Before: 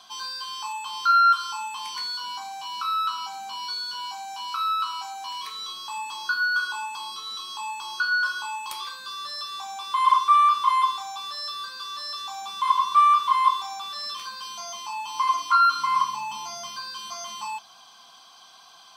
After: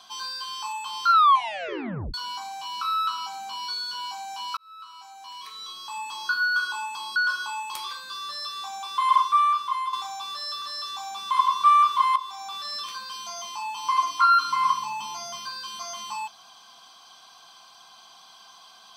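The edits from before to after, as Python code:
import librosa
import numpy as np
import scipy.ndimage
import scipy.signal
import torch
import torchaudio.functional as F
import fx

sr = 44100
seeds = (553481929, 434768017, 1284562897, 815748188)

y = fx.edit(x, sr, fx.tape_stop(start_s=1.11, length_s=1.03),
    fx.fade_in_span(start_s=4.57, length_s=1.68),
    fx.cut(start_s=7.16, length_s=0.96),
    fx.fade_out_to(start_s=9.95, length_s=0.94, floor_db=-9.5),
    fx.cut(start_s=11.58, length_s=0.35),
    fx.fade_in_from(start_s=13.47, length_s=0.4, floor_db=-13.0), tone=tone)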